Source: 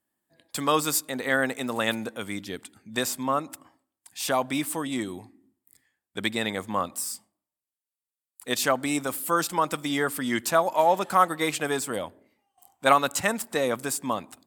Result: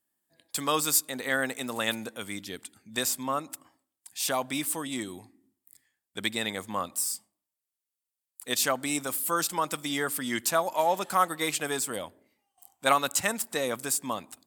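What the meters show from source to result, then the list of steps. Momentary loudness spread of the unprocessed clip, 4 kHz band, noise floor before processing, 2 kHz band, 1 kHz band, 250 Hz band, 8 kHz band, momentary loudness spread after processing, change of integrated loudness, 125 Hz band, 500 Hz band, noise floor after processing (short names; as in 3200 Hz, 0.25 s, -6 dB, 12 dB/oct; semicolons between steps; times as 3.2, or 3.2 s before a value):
13 LU, 0.0 dB, under -85 dBFS, -3.0 dB, -4.0 dB, -5.0 dB, +2.0 dB, 12 LU, -2.5 dB, -5.0 dB, -4.5 dB, under -85 dBFS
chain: high shelf 3000 Hz +8 dB; gain -5 dB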